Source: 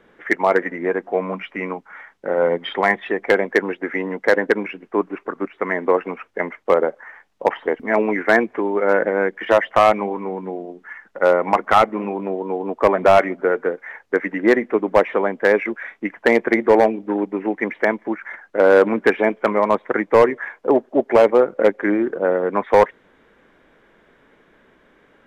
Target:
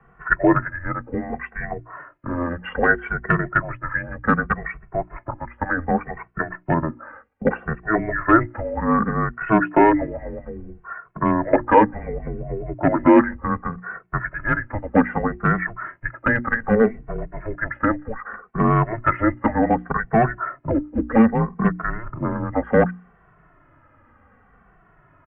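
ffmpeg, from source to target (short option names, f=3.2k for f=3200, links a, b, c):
-filter_complex "[0:a]highpass=f=250:t=q:w=0.5412,highpass=f=250:t=q:w=1.307,lowpass=f=2.5k:t=q:w=0.5176,lowpass=f=2.5k:t=q:w=0.7071,lowpass=f=2.5k:t=q:w=1.932,afreqshift=-340,acrossover=split=200[a][b];[a]acompressor=threshold=-31dB:ratio=6[c];[c][b]amix=inputs=2:normalize=0,bandreject=f=60:t=h:w=6,bandreject=f=120:t=h:w=6,bandreject=f=180:t=h:w=6,bandreject=f=240:t=h:w=6,bandreject=f=300:t=h:w=6,bandreject=f=360:t=h:w=6,asplit=2[d][e];[e]adelay=2.2,afreqshift=-0.65[f];[d][f]amix=inputs=2:normalize=1,volume=4.5dB"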